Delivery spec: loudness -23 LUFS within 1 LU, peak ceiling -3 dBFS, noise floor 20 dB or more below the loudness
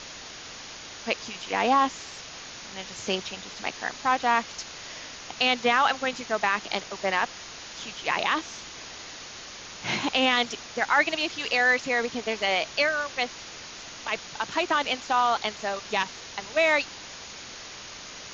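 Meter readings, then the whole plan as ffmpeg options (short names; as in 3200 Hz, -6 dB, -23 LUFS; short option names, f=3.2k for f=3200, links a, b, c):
noise floor -42 dBFS; noise floor target -46 dBFS; loudness -26.0 LUFS; peak -8.5 dBFS; loudness target -23.0 LUFS
-> -af "afftdn=nr=6:nf=-42"
-af "volume=3dB"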